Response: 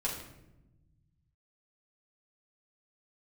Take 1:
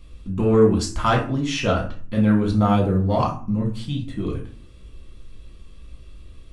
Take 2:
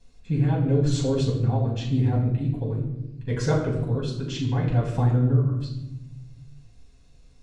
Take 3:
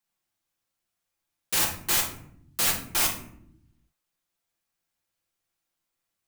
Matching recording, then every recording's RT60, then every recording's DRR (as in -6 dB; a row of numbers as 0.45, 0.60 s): 2; 0.45, 0.95, 0.70 s; -2.0, -5.0, -2.5 dB